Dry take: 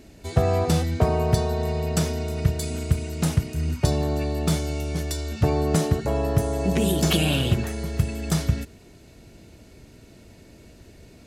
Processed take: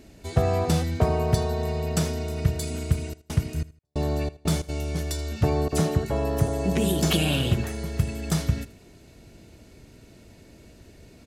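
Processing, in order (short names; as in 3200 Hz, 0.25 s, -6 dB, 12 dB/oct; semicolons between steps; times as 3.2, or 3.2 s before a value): 3.12–4.68 step gate "x.xx..xx." 91 bpm -60 dB; 5.68–6.48 dispersion lows, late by 47 ms, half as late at 2600 Hz; feedback echo 80 ms, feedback 26%, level -19 dB; gain -1.5 dB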